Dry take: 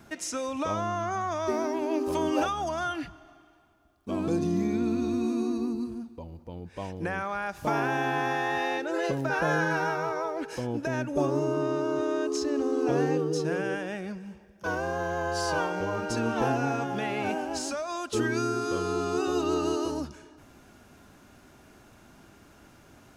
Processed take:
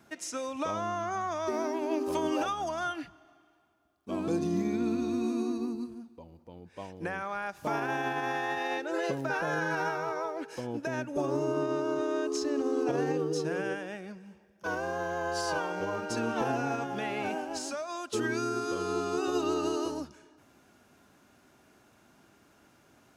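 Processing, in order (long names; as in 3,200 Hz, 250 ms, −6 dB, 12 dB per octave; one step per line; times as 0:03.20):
high-pass filter 160 Hz 6 dB per octave
brickwall limiter −20 dBFS, peak gain reduction 5.5 dB
expander for the loud parts 1.5 to 1, over −38 dBFS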